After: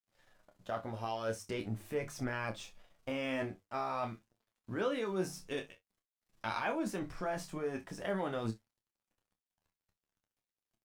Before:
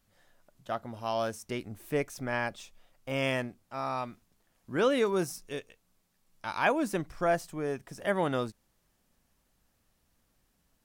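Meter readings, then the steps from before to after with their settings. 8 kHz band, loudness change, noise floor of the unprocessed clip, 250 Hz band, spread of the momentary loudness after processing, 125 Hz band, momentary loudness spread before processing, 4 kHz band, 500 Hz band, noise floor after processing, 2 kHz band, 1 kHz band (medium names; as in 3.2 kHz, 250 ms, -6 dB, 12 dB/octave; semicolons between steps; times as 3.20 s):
-5.0 dB, -6.5 dB, -73 dBFS, -5.0 dB, 8 LU, -4.0 dB, 12 LU, -6.0 dB, -7.0 dB, under -85 dBFS, -7.0 dB, -6.0 dB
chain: de-esser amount 85%; treble shelf 8.5 kHz -10 dB; hum notches 50/100/150 Hz; in parallel at +2 dB: compressor with a negative ratio -36 dBFS, ratio -0.5; on the sum: crossover distortion -55.5 dBFS; flange 0.46 Hz, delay 8.5 ms, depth 2.9 ms, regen +33%; on a send: early reflections 27 ms -7.5 dB, 61 ms -17.5 dB; on the sum: trim -5.5 dB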